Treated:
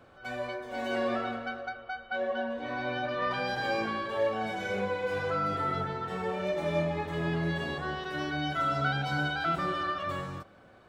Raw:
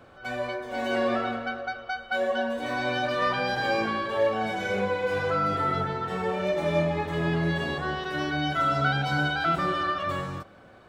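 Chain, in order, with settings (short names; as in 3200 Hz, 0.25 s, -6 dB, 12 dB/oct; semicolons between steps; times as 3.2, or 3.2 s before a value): 1.69–3.31 air absorption 170 m; gain -4.5 dB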